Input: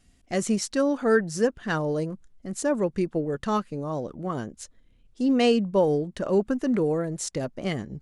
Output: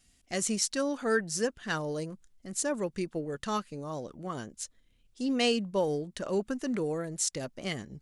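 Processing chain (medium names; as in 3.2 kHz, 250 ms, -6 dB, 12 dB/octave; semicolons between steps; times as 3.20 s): treble shelf 2 kHz +11.5 dB; trim -8 dB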